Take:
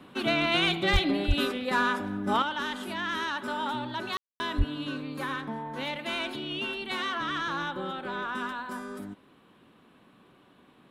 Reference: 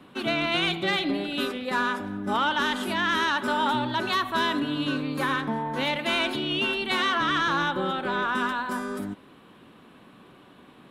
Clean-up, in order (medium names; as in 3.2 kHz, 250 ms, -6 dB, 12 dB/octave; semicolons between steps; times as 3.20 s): clip repair -15 dBFS; de-plosive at 0.92/1.27/4.57 s; room tone fill 4.17–4.40 s; trim 0 dB, from 2.42 s +7 dB